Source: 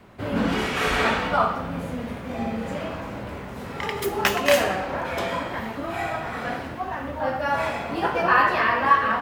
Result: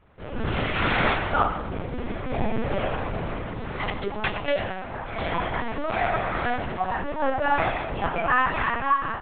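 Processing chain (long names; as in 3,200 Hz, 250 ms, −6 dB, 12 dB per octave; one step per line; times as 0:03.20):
dynamic equaliser 340 Hz, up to −4 dB, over −44 dBFS, Q 6
automatic gain control gain up to 13.5 dB
linear-prediction vocoder at 8 kHz pitch kept
level −8.5 dB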